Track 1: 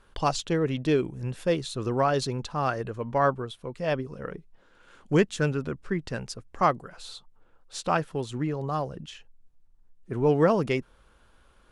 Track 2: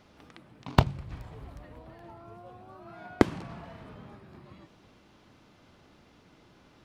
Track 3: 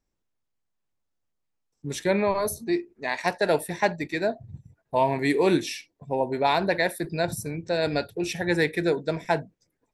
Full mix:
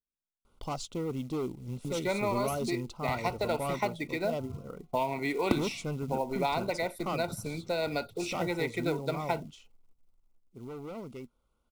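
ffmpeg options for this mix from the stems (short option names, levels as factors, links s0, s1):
-filter_complex "[0:a]equalizer=f=2200:w=0.85:g=-6,asoftclip=type=hard:threshold=0.075,adelay=450,volume=0.447,afade=t=out:st=10.13:d=0.38:silence=0.354813[s0];[1:a]aeval=exprs='val(0)*pow(10,-22*(0.5-0.5*cos(2*PI*0.92*n/s))/20)':c=same,adelay=2300,volume=0.422[s1];[2:a]agate=range=0.0794:threshold=0.00631:ratio=16:detection=peak,highshelf=f=4600:g=-10,acrossover=split=690|1800[s2][s3][s4];[s2]acompressor=threshold=0.0158:ratio=4[s5];[s3]acompressor=threshold=0.0224:ratio=4[s6];[s4]acompressor=threshold=0.0141:ratio=4[s7];[s5][s6][s7]amix=inputs=3:normalize=0,volume=1.06[s8];[s0][s1][s8]amix=inputs=3:normalize=0,equalizer=f=240:w=6.3:g=6,acrusher=bits=6:mode=log:mix=0:aa=0.000001,asuperstop=centerf=1700:order=8:qfactor=4.1"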